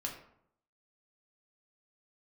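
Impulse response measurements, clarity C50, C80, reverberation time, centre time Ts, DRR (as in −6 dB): 7.0 dB, 10.0 dB, 0.70 s, 25 ms, −1.0 dB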